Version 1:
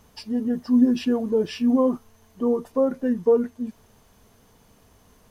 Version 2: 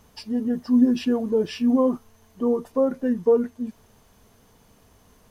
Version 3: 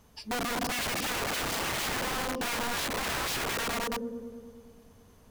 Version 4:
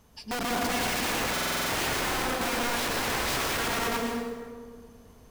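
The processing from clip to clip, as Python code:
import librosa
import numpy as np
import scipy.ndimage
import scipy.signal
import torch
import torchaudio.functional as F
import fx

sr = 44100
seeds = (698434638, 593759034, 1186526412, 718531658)

y1 = x
y2 = fx.echo_opening(y1, sr, ms=105, hz=200, octaves=1, feedback_pct=70, wet_db=0)
y2 = (np.mod(10.0 ** (22.5 / 20.0) * y2 + 1.0, 2.0) - 1.0) / 10.0 ** (22.5 / 20.0)
y2 = y2 * 10.0 ** (-4.5 / 20.0)
y3 = fx.rev_plate(y2, sr, seeds[0], rt60_s=1.5, hf_ratio=0.65, predelay_ms=100, drr_db=-0.5)
y3 = fx.buffer_glitch(y3, sr, at_s=(1.32,), block=2048, repeats=7)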